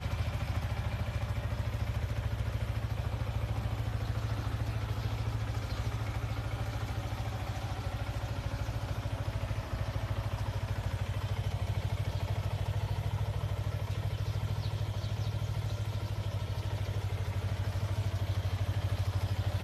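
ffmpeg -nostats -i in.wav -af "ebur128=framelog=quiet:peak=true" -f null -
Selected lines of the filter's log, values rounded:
Integrated loudness:
  I:         -35.4 LUFS
  Threshold: -45.4 LUFS
Loudness range:
  LRA:         1.8 LU
  Threshold: -55.5 LUFS
  LRA low:   -36.7 LUFS
  LRA high:  -34.9 LUFS
True peak:
  Peak:      -21.4 dBFS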